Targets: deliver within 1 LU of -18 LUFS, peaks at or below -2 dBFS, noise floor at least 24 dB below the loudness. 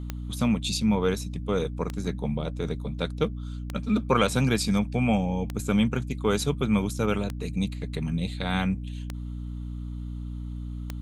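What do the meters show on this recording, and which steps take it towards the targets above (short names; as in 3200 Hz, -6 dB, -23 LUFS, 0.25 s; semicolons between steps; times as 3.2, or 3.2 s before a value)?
clicks 7; hum 60 Hz; harmonics up to 300 Hz; hum level -32 dBFS; loudness -28.0 LUFS; peak -7.0 dBFS; loudness target -18.0 LUFS
-> de-click; de-hum 60 Hz, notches 5; gain +10 dB; limiter -2 dBFS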